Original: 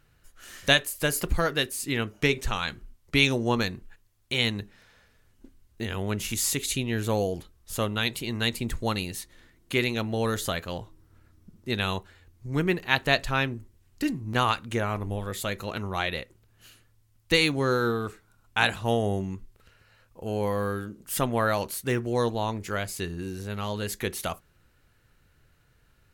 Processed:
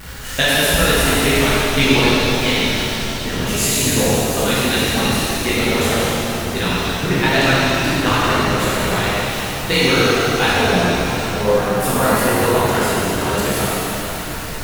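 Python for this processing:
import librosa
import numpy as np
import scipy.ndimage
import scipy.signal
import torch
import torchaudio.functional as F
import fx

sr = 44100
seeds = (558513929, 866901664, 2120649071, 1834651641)

y = x + 0.5 * 10.0 ** (-32.0 / 20.0) * np.sign(x)
y = fx.stretch_grains(y, sr, factor=0.56, grain_ms=36.0)
y = fx.rev_shimmer(y, sr, seeds[0], rt60_s=3.3, semitones=7, shimmer_db=-8, drr_db=-10.0)
y = y * librosa.db_to_amplitude(1.0)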